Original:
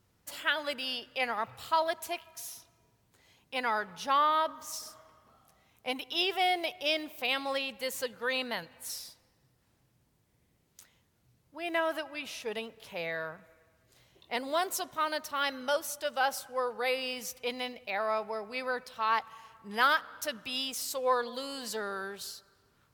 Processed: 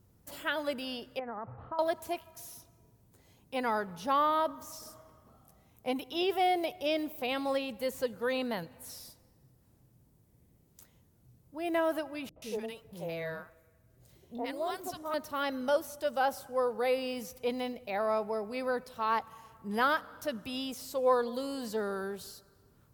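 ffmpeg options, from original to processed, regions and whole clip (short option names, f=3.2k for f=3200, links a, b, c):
-filter_complex "[0:a]asettb=1/sr,asplit=3[a][b][c];[a]atrim=end=1.194[d];[b]atrim=start=1.19:end=1.79,asetpts=PTS-STARTPTS,afade=t=in:d=0.004:c=qsin,afade=t=out:st=0.596:d=0.004:c=qsin,acompressor=threshold=-35dB:ratio=4:attack=3.2:release=140:knee=1:detection=peak,lowpass=f=1.6k:w=0.5412,lowpass=f=1.6k:w=1.3066[e];[c]atrim=start=1.786[f];[d][e]acrossfade=d=0.004:c1=hsin:c2=qsin[g];[g][f]acrossfade=d=0.004:c1=qsin:c2=hsin,asettb=1/sr,asplit=3[h][i][j];[h]atrim=end=12.294[k];[i]atrim=start=12.29:end=15.14,asetpts=PTS-STARTPTS,afade=t=in:d=0.004:c=qsin,afade=t=out:st=2.846:d=0.004:c=qsin,tremolo=f=1.1:d=0.3,acrossover=split=330|1000[l][m][n];[m]adelay=70[o];[n]adelay=130[p];[l][o][p]amix=inputs=3:normalize=0,atrim=end_sample=125685[q];[j]atrim=start=15.136[r];[k][q]acrossfade=d=0.004:c1=hsin:c2=qsin[s];[s][r]acrossfade=d=0.004:c1=qsin:c2=hsin,acrossover=split=4500[t][u];[u]acompressor=threshold=-48dB:ratio=4:attack=1:release=60[v];[t][v]amix=inputs=2:normalize=0,equalizer=f=2.6k:w=0.31:g=-14,volume=8dB"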